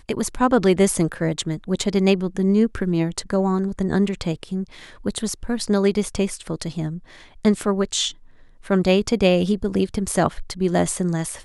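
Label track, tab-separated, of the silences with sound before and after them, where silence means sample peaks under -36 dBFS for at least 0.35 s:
8.110000	8.650000	silence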